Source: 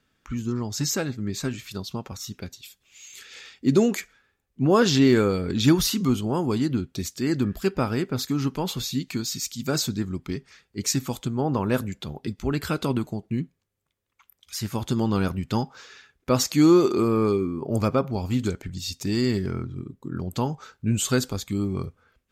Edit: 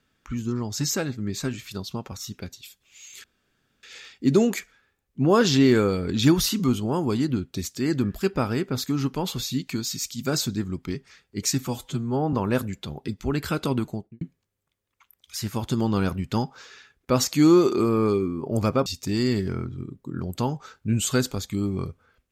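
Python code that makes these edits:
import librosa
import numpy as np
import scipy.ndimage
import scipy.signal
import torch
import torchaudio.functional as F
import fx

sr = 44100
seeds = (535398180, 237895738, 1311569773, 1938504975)

y = fx.studio_fade_out(x, sr, start_s=13.1, length_s=0.3)
y = fx.edit(y, sr, fx.insert_room_tone(at_s=3.24, length_s=0.59),
    fx.stretch_span(start_s=11.08, length_s=0.44, factor=1.5),
    fx.cut(start_s=18.05, length_s=0.79), tone=tone)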